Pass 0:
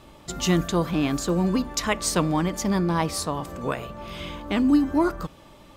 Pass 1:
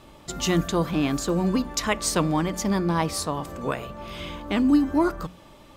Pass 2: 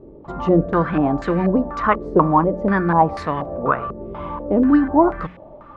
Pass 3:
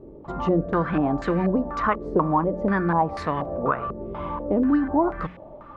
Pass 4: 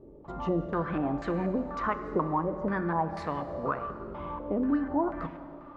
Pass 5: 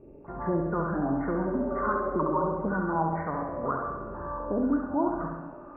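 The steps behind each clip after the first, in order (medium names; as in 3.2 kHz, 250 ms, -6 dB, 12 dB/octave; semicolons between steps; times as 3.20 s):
hum notches 60/120/180 Hz
step-sequenced low-pass 4.1 Hz 420–2000 Hz; trim +4 dB
compression 2:1, threshold -19 dBFS, peak gain reduction 6 dB; trim -1.5 dB
plate-style reverb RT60 2.5 s, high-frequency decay 0.95×, DRR 9.5 dB; trim -7.5 dB
knee-point frequency compression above 1.4 kHz 4:1; spectral replace 1.56–2.44 s, 380–860 Hz both; flutter echo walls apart 11.5 m, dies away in 0.89 s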